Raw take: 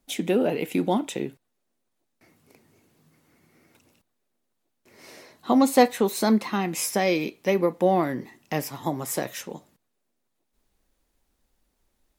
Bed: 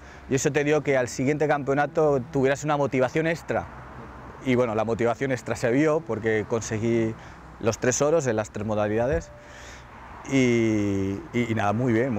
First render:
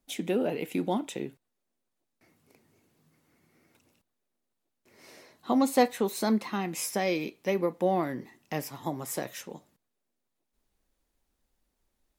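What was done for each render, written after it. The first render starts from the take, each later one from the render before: gain -5.5 dB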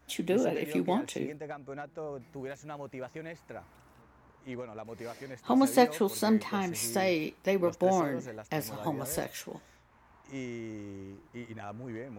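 add bed -18.5 dB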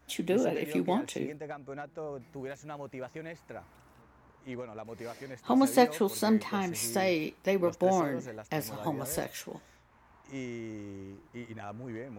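nothing audible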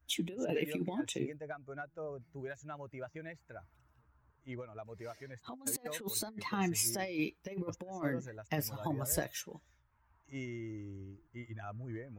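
per-bin expansion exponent 1.5; negative-ratio compressor -35 dBFS, ratio -0.5

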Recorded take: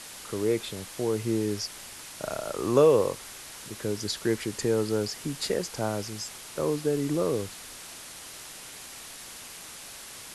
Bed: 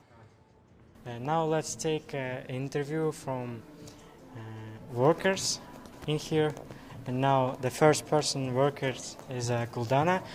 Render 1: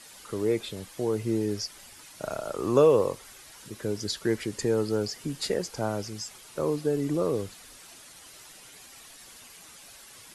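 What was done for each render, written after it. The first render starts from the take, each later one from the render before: denoiser 9 dB, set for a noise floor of -44 dBFS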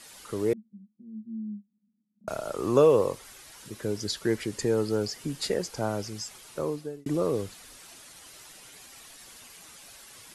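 0.53–2.28 Butterworth band-pass 210 Hz, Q 7.2; 6.51–7.06 fade out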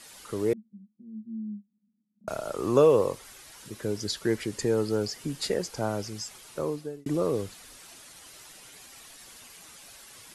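nothing audible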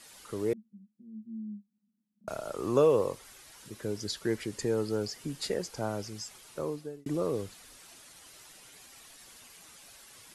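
gain -4 dB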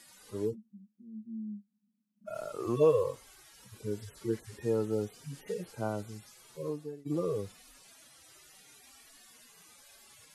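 median-filter separation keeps harmonic

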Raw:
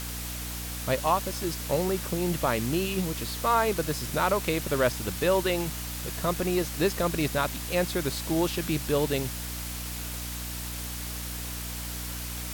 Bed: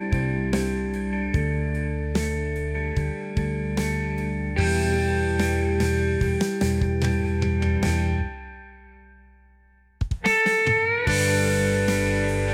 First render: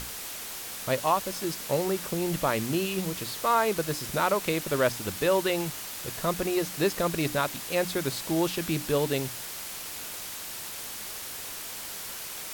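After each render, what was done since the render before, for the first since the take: notches 60/120/180/240/300 Hz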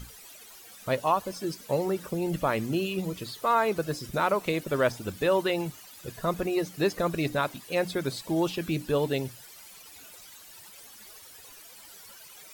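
denoiser 15 dB, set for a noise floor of -38 dBFS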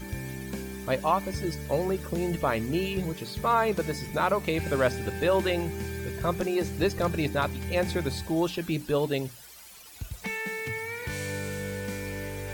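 add bed -12.5 dB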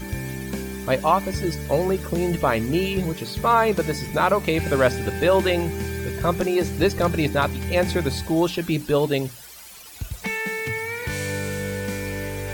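gain +6 dB

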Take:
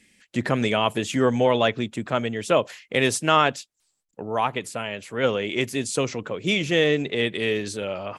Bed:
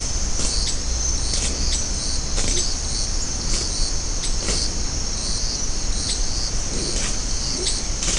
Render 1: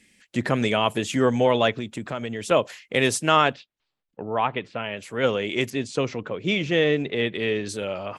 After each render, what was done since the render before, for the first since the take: 1.78–2.51 compressor 3:1, threshold -26 dBFS; 3.53–4.97 LPF 3600 Hz 24 dB/oct; 5.7–7.69 air absorption 120 m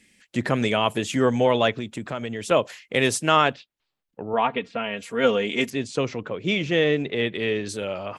4.33–5.69 comb 4.3 ms, depth 70%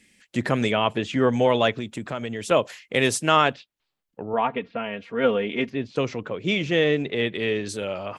0.71–1.33 LPF 3900 Hz; 4.26–5.96 air absorption 280 m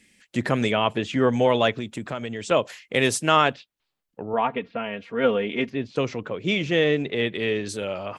2.14–2.67 elliptic low-pass 8300 Hz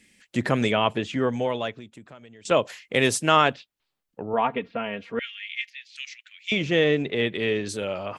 0.87–2.45 fade out quadratic, to -17 dB; 5.19–6.52 steep high-pass 1900 Hz 48 dB/oct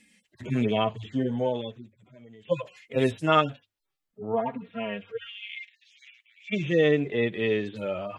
median-filter separation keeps harmonic; notches 50/100 Hz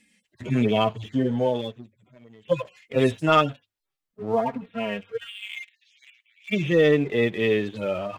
sample leveller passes 1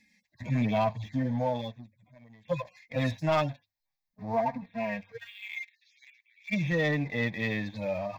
fixed phaser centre 2000 Hz, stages 8; soft clip -18.5 dBFS, distortion -17 dB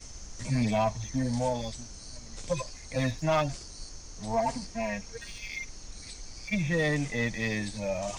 add bed -21 dB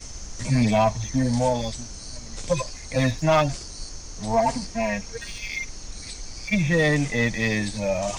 gain +7 dB

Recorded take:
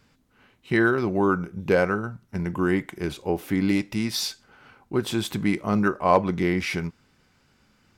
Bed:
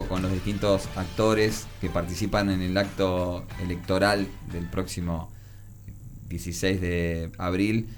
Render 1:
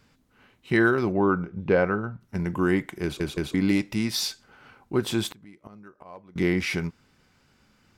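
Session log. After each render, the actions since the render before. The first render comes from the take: 1.12–2.21 air absorption 230 m; 3.03 stutter in place 0.17 s, 3 plays; 5.3–6.36 flipped gate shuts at -20 dBFS, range -26 dB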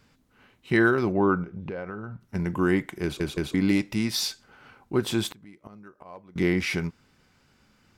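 1.43–2.2 compressor 5:1, threshold -32 dBFS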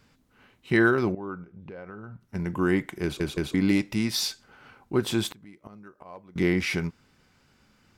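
1.15–2.88 fade in, from -17 dB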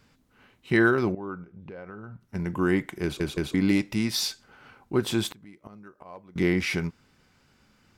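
nothing audible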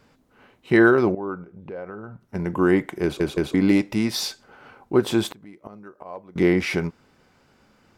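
bell 570 Hz +8.5 dB 2.4 oct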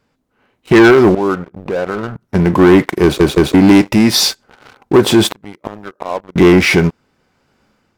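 sample leveller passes 3; AGC gain up to 7.5 dB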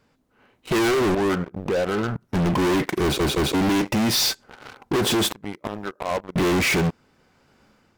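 hard clip -19 dBFS, distortion -5 dB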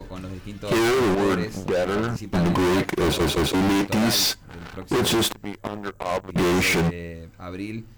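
add bed -8 dB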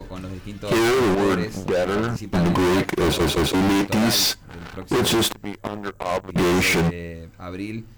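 gain +1.5 dB

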